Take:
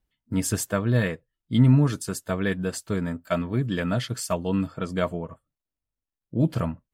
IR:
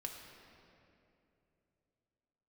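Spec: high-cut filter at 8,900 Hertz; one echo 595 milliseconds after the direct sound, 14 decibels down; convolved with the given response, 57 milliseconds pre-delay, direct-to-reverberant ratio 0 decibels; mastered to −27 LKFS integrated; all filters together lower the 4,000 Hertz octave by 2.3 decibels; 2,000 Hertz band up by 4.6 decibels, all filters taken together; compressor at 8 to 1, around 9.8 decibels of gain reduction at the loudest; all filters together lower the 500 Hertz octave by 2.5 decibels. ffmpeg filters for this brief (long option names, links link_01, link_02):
-filter_complex "[0:a]lowpass=8900,equalizer=frequency=500:width_type=o:gain=-3.5,equalizer=frequency=2000:width_type=o:gain=7,equalizer=frequency=4000:width_type=o:gain=-5.5,acompressor=threshold=-23dB:ratio=8,aecho=1:1:595:0.2,asplit=2[link_01][link_02];[1:a]atrim=start_sample=2205,adelay=57[link_03];[link_02][link_03]afir=irnorm=-1:irlink=0,volume=2dB[link_04];[link_01][link_04]amix=inputs=2:normalize=0"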